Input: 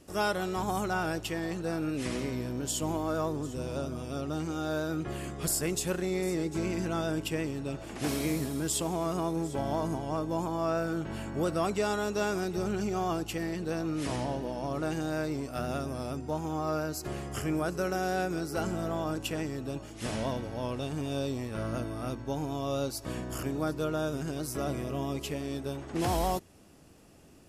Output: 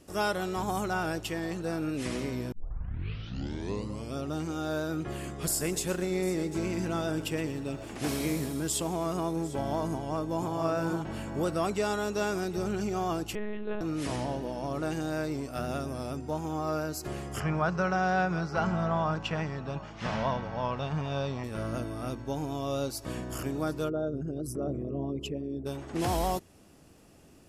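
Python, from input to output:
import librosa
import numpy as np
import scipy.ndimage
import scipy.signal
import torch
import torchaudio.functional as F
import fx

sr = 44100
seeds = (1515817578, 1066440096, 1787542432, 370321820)

y = fx.echo_crushed(x, sr, ms=119, feedback_pct=35, bits=10, wet_db=-14.0, at=(5.47, 8.53))
y = fx.echo_throw(y, sr, start_s=9.93, length_s=0.61, ms=480, feedback_pct=30, wet_db=-4.5)
y = fx.lpc_monotone(y, sr, seeds[0], pitch_hz=210.0, order=10, at=(13.35, 13.81))
y = fx.curve_eq(y, sr, hz=(120.0, 170.0, 290.0, 1000.0, 5900.0, 11000.0), db=(0, 8, -7, 9, -4, -29), at=(17.4, 21.44))
y = fx.envelope_sharpen(y, sr, power=2.0, at=(23.88, 25.65), fade=0.02)
y = fx.edit(y, sr, fx.tape_start(start_s=2.52, length_s=1.66), tone=tone)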